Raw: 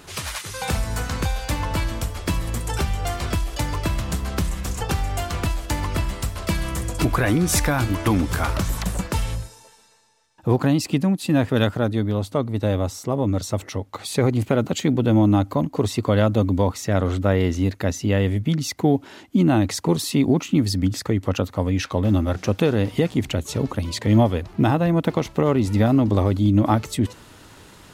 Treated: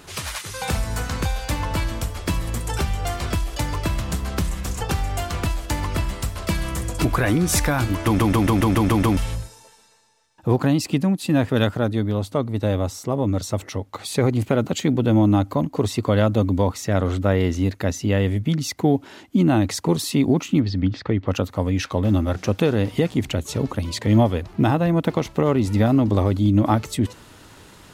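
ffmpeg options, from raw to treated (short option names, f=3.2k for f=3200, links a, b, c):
-filter_complex "[0:a]asplit=3[a][b][c];[a]afade=t=out:st=20.59:d=0.02[d];[b]lowpass=f=4k:w=0.5412,lowpass=f=4k:w=1.3066,afade=t=in:st=20.59:d=0.02,afade=t=out:st=21.27:d=0.02[e];[c]afade=t=in:st=21.27:d=0.02[f];[d][e][f]amix=inputs=3:normalize=0,asplit=9[g][h][i][j][k][l][m][n][o];[g]atrim=end=8.192[p];[h]atrim=start=8.048:end=8.192[q];[i]atrim=start=8.048:end=8.192[r];[j]atrim=start=8.048:end=8.192[s];[k]atrim=start=8.048:end=8.192[t];[l]atrim=start=8.048:end=8.192[u];[m]atrim=start=8.048:end=8.192[v];[n]atrim=start=8.048:end=8.192[w];[o]atrim=start=9.168[x];[p][q]acrossfade=d=0.004:c1=hsin:c2=hsin[y];[y][r]acrossfade=d=0.004:c1=hsin:c2=hsin[z];[z][s]acrossfade=d=0.004:c1=hsin:c2=hsin[aa];[aa][t]acrossfade=d=0.004:c1=hsin:c2=hsin[ab];[ab][u]acrossfade=d=0.004:c1=hsin:c2=hsin[ac];[ac][v]acrossfade=d=0.004:c1=hsin:c2=hsin[ad];[ad][w]acrossfade=d=0.004:c1=hsin:c2=hsin[ae];[ae][x]acrossfade=d=0.004:c1=hsin:c2=hsin"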